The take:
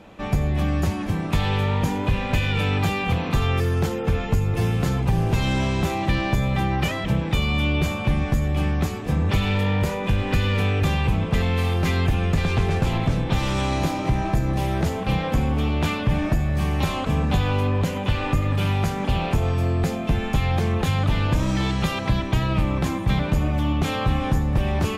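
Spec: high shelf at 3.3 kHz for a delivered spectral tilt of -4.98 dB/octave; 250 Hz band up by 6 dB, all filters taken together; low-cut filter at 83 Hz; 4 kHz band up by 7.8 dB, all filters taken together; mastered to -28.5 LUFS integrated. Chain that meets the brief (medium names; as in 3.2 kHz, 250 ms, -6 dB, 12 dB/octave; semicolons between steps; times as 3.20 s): high-pass 83 Hz; peaking EQ 250 Hz +8.5 dB; treble shelf 3.3 kHz +5.5 dB; peaking EQ 4 kHz +6.5 dB; trim -8 dB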